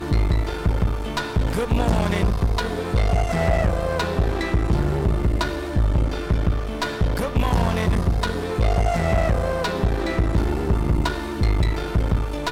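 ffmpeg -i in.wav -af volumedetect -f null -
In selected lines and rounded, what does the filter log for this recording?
mean_volume: -20.4 dB
max_volume: -9.0 dB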